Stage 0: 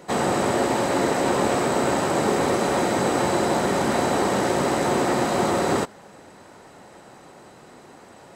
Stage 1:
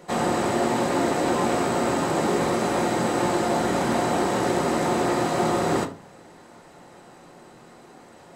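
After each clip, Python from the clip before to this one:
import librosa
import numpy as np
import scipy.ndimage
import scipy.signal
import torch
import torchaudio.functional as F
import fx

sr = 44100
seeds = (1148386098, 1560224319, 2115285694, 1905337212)

y = fx.room_shoebox(x, sr, seeds[0], volume_m3=210.0, walls='furnished', distance_m=0.87)
y = F.gain(torch.from_numpy(y), -3.0).numpy()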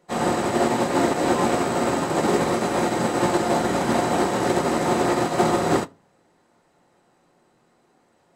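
y = fx.upward_expand(x, sr, threshold_db=-33.0, expansion=2.5)
y = F.gain(torch.from_numpy(y), 5.5).numpy()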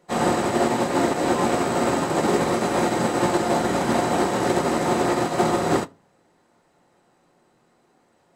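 y = fx.rider(x, sr, range_db=10, speed_s=0.5)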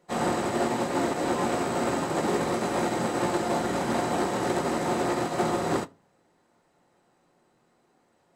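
y = fx.transformer_sat(x, sr, knee_hz=550.0)
y = F.gain(torch.from_numpy(y), -4.5).numpy()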